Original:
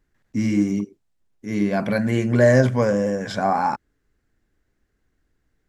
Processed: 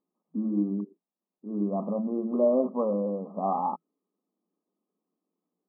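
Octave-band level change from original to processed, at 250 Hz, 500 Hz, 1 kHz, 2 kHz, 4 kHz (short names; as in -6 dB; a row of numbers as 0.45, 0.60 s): -7.0 dB, -7.0 dB, -7.0 dB, under -40 dB, under -40 dB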